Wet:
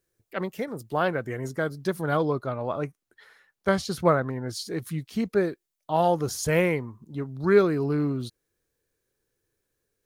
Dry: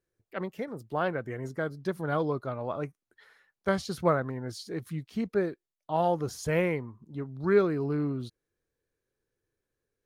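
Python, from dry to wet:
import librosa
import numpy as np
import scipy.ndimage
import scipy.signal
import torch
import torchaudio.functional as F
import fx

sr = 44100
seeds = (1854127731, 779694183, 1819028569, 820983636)

y = fx.high_shelf(x, sr, hz=4700.0, db=fx.steps((0.0, 9.0), (2.16, 2.5), (4.55, 8.0)))
y = y * librosa.db_to_amplitude(4.0)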